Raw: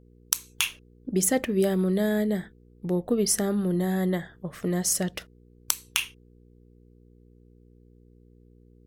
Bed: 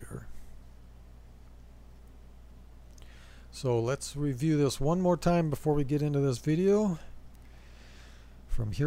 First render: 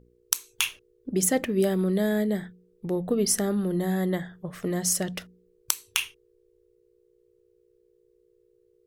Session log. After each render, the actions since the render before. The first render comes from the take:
hum removal 60 Hz, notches 5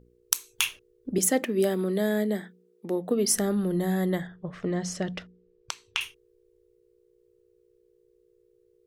0:01.18–0:03.34: Butterworth high-pass 200 Hz
0:04.27–0:06.01: high-frequency loss of the air 140 metres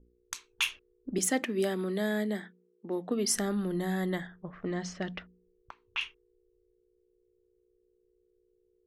low-pass that shuts in the quiet parts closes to 490 Hz, open at −23.5 dBFS
graphic EQ with 10 bands 125 Hz −11 dB, 500 Hz −7 dB, 16,000 Hz −11 dB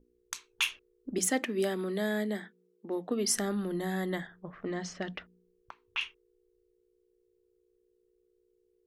low-shelf EQ 120 Hz −5.5 dB
mains-hum notches 60/120/180 Hz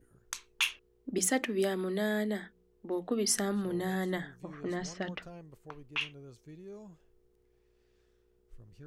mix in bed −22.5 dB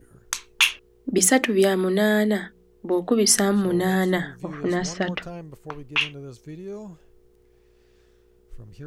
level +11.5 dB

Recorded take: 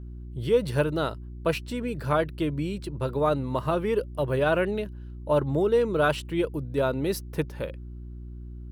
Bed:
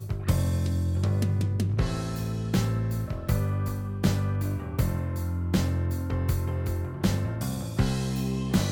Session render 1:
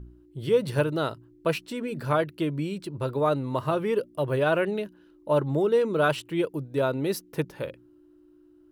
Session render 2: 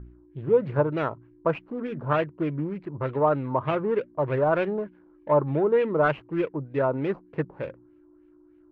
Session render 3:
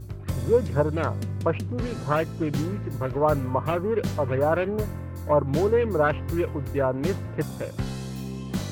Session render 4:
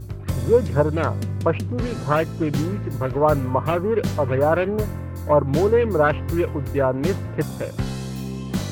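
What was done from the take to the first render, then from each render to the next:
hum removal 60 Hz, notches 4
running median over 25 samples; auto-filter low-pass sine 3.3 Hz 940–2,400 Hz
mix in bed −5 dB
level +4 dB

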